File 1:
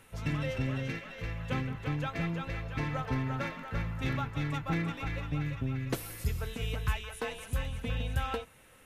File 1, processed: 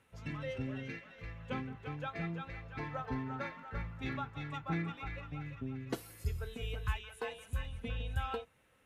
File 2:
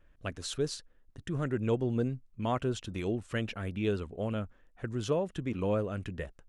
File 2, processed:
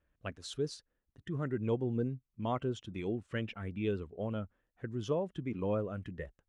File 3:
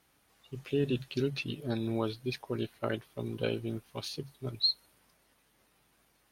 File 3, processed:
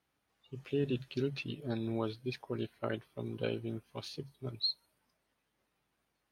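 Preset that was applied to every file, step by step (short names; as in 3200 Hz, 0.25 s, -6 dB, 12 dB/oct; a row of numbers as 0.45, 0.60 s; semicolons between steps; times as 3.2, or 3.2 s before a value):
spectral noise reduction 7 dB; HPF 40 Hz; high shelf 6400 Hz -9 dB; gain -3 dB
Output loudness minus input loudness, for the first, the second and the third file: -6.0, -3.5, -4.0 LU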